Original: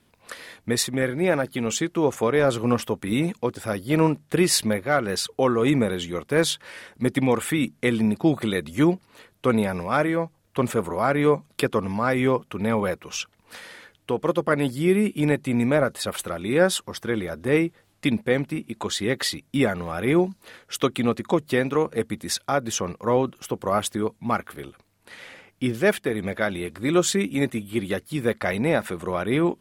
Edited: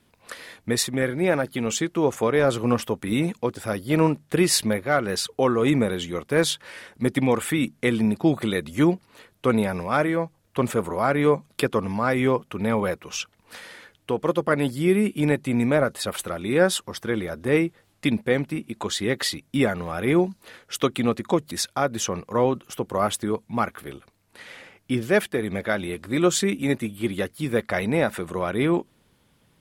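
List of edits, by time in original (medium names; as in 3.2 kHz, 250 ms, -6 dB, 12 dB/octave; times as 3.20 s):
21.51–22.23 s: delete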